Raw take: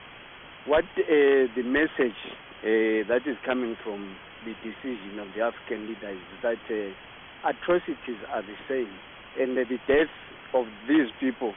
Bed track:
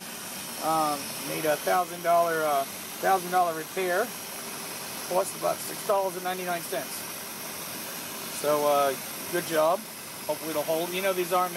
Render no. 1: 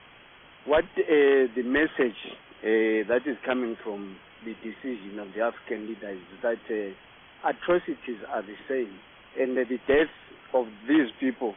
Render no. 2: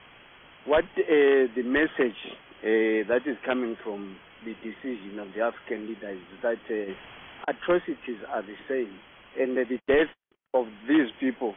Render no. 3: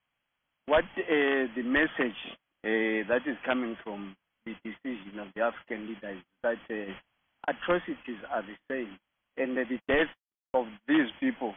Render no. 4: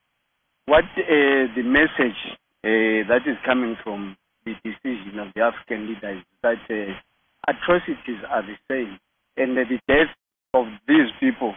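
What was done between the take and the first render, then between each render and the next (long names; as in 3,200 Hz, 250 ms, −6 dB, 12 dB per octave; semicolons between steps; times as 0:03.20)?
noise reduction from a noise print 6 dB
0:06.84–0:07.48: compressor whose output falls as the input rises −37 dBFS, ratio −0.5; 0:09.76–0:10.56: noise gate −45 dBFS, range −45 dB
noise gate −39 dBFS, range −30 dB; parametric band 400 Hz −10 dB 0.51 octaves
level +9 dB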